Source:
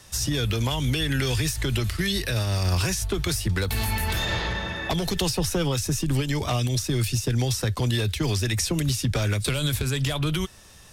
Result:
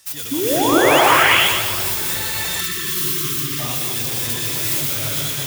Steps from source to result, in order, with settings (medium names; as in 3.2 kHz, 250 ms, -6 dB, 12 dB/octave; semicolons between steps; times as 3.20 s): tracing distortion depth 0.35 ms; time stretch by phase-locked vocoder 0.5×; tilt EQ +3.5 dB/octave; painted sound rise, 0.31–1.02 s, 260–3500 Hz -15 dBFS; two-band feedback delay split 1.3 kHz, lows 195 ms, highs 120 ms, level -6 dB; gated-style reverb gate 490 ms rising, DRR -7.5 dB; spectral selection erased 2.61–3.59 s, 450–1000 Hz; trim -6.5 dB